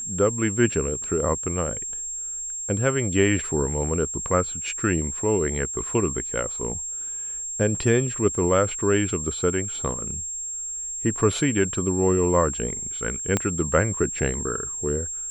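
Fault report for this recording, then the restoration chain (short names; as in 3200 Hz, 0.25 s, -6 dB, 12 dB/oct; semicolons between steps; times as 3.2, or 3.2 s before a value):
tone 7500 Hz -29 dBFS
13.37 pop -8 dBFS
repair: de-click; notch 7500 Hz, Q 30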